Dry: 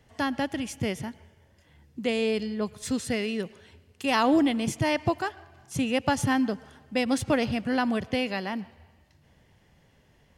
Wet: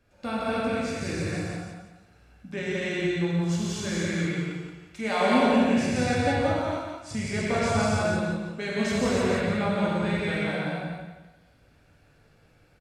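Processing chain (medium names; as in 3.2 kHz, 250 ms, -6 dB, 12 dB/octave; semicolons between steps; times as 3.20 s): tape speed -19%; feedback delay 174 ms, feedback 31%, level -4 dB; gated-style reverb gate 340 ms flat, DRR -7.5 dB; trim -7.5 dB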